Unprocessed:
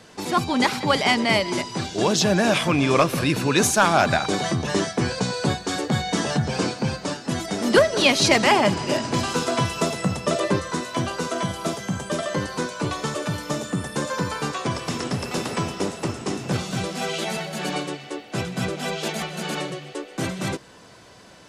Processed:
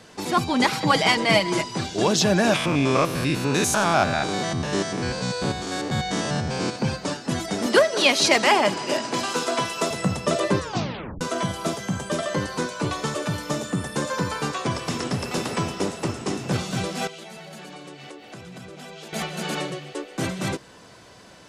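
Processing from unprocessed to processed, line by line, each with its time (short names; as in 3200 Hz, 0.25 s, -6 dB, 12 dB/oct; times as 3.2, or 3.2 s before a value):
0.72–1.64 comb 6.2 ms
2.56–6.76 stepped spectrum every 0.1 s
7.66–9.91 Bessel high-pass 310 Hz
10.6 tape stop 0.61 s
17.07–19.13 compressor 16:1, threshold -36 dBFS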